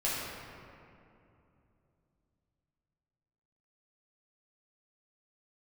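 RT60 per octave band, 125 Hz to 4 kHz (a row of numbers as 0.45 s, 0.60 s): 4.2 s, 3.6 s, 2.9 s, 2.6 s, 2.1 s, 1.4 s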